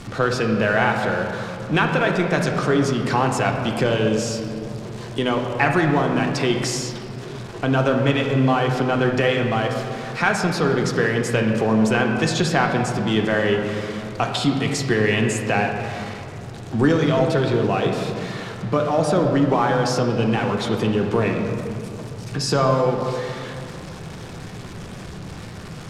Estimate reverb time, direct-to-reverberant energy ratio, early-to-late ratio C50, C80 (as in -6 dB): 2.6 s, 2.0 dB, 4.0 dB, 5.5 dB